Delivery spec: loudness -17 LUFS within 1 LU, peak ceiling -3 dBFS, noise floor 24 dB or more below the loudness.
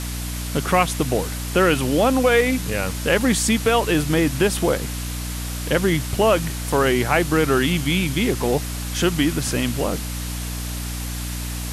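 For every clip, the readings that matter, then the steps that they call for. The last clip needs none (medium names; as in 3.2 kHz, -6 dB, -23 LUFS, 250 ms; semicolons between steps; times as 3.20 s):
hum 60 Hz; highest harmonic 300 Hz; hum level -26 dBFS; noise floor -28 dBFS; noise floor target -45 dBFS; loudness -21.0 LUFS; peak level -4.0 dBFS; loudness target -17.0 LUFS
-> hum notches 60/120/180/240/300 Hz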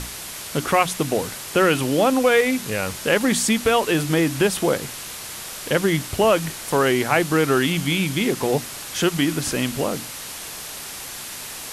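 hum not found; noise floor -34 dBFS; noise floor target -46 dBFS
-> noise reduction 12 dB, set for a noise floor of -34 dBFS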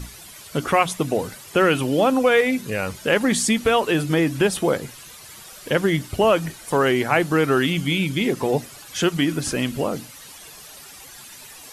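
noise floor -42 dBFS; noise floor target -45 dBFS
-> noise reduction 6 dB, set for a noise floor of -42 dBFS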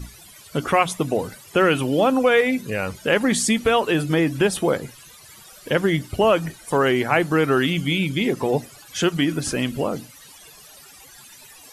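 noise floor -46 dBFS; loudness -21.0 LUFS; peak level -4.5 dBFS; loudness target -17.0 LUFS
-> trim +4 dB; peak limiter -3 dBFS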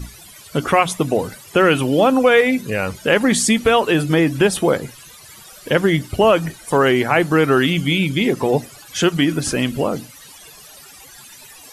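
loudness -17.0 LUFS; peak level -3.0 dBFS; noise floor -42 dBFS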